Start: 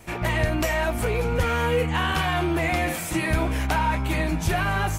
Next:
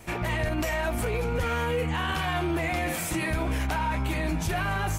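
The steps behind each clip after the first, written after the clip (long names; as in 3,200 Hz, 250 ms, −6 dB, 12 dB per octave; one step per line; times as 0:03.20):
brickwall limiter −20 dBFS, peak gain reduction 6.5 dB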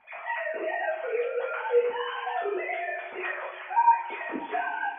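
three sine waves on the formant tracks
high-frequency loss of the air 190 metres
coupled-rooms reverb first 0.41 s, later 2.8 s, from −18 dB, DRR −6.5 dB
level −8.5 dB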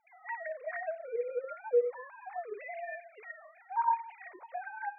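three sine waves on the formant tracks
level −7.5 dB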